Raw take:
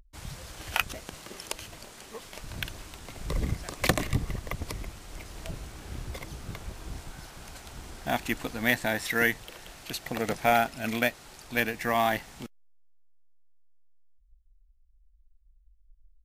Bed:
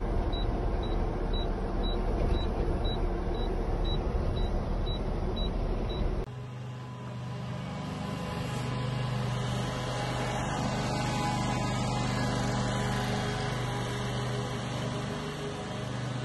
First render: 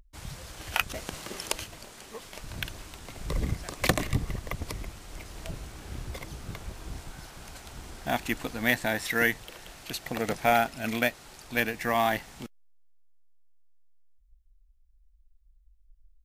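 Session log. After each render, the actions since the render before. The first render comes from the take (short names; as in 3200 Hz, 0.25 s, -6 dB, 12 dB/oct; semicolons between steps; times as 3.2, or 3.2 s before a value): 0.94–1.64 gain +4.5 dB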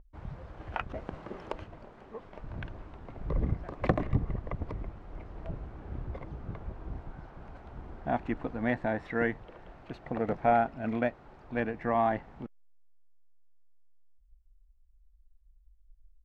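LPF 1100 Hz 12 dB/oct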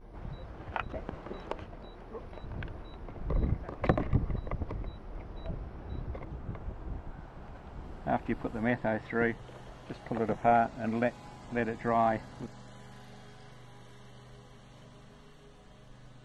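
add bed -20.5 dB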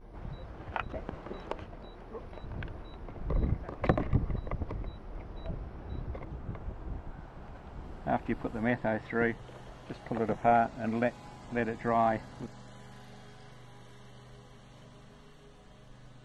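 nothing audible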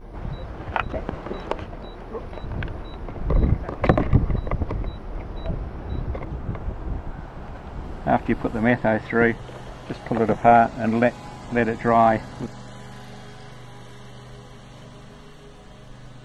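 gain +10.5 dB; limiter -2 dBFS, peak gain reduction 2 dB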